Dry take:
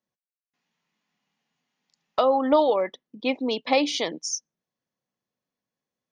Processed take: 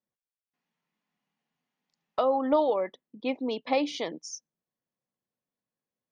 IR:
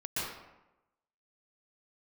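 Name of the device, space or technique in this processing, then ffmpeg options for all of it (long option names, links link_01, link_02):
behind a face mask: -af "highshelf=frequency=2600:gain=-8,volume=-4dB"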